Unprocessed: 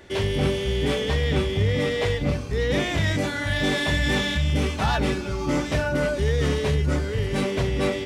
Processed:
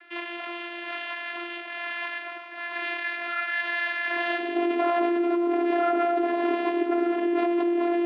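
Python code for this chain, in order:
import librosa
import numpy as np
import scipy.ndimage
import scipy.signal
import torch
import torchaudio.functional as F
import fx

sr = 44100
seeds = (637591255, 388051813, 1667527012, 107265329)

p1 = fx.tracing_dist(x, sr, depth_ms=0.095)
p2 = p1 + 10.0 ** (-13.5 / 20.0) * np.pad(p1, (int(145 * sr / 1000.0), 0))[:len(p1)]
p3 = np.clip(p2, -10.0 ** (-24.5 / 20.0), 10.0 ** (-24.5 / 20.0))
p4 = p3 + fx.echo_feedback(p3, sr, ms=98, feedback_pct=57, wet_db=-11.0, dry=0)
p5 = fx.filter_sweep_highpass(p4, sr, from_hz=1500.0, to_hz=320.0, start_s=3.96, end_s=4.54, q=0.91)
p6 = fx.vocoder(p5, sr, bands=16, carrier='saw', carrier_hz=345.0)
p7 = fx.over_compress(p6, sr, threshold_db=-31.0, ratio=-0.5)
p8 = p6 + F.gain(torch.from_numpy(p7), 2.5).numpy()
y = scipy.signal.sosfilt(scipy.signal.butter(4, 2900.0, 'lowpass', fs=sr, output='sos'), p8)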